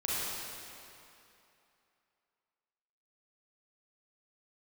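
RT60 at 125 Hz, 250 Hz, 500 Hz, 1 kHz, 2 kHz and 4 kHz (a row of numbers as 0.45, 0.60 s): 2.5, 2.6, 2.7, 2.9, 2.6, 2.3 s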